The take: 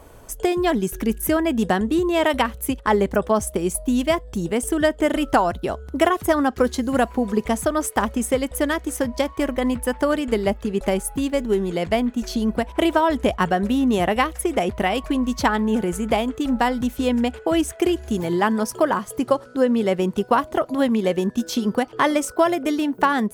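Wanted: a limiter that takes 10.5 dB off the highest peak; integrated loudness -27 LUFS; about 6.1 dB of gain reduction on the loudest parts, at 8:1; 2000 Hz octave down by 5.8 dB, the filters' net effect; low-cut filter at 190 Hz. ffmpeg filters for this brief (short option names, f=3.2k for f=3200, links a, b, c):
-af "highpass=190,equalizer=f=2k:t=o:g=-7.5,acompressor=threshold=-20dB:ratio=8,volume=1.5dB,alimiter=limit=-17.5dB:level=0:latency=1"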